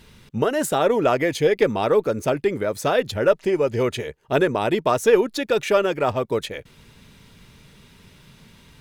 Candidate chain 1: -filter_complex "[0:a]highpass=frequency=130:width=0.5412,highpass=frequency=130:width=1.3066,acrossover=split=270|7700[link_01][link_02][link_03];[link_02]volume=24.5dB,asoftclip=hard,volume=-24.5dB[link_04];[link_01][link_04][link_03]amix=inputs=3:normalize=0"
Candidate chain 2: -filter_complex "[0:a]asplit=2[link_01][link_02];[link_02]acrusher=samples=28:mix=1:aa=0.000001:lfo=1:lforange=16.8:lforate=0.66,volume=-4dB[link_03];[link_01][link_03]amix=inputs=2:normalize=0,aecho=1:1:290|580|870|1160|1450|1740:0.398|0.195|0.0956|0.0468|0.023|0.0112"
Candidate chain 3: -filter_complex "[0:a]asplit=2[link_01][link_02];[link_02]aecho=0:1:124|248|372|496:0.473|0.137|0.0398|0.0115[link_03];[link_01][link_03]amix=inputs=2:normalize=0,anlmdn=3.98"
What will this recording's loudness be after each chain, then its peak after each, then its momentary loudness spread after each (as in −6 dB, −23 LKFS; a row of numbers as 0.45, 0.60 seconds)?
−26.5, −17.5, −20.5 LKFS; −15.5, −1.0, −4.5 dBFS; 5, 9, 6 LU